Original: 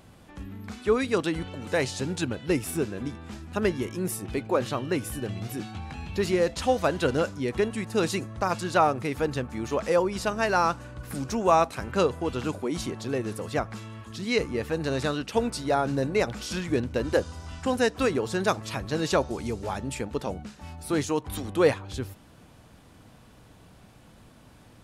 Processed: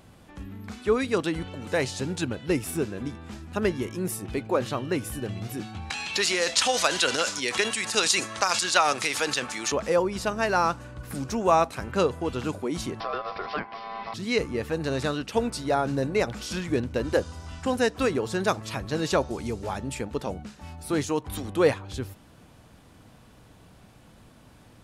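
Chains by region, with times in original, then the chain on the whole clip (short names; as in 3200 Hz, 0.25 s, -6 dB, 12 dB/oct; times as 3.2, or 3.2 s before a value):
5.9–9.72 weighting filter ITU-R 468 + transient shaper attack +4 dB, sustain +9 dB + three-band squash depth 40%
13–14.14 ring modulator 900 Hz + careless resampling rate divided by 4×, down none, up filtered + three-band squash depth 100%
whole clip: dry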